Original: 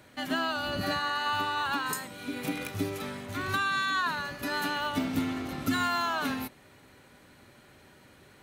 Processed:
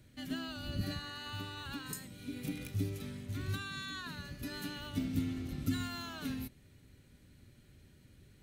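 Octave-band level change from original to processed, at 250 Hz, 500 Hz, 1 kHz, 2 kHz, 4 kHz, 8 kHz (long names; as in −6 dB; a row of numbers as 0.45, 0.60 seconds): −5.5, −12.5, −19.0, −15.0, −9.5, −7.5 decibels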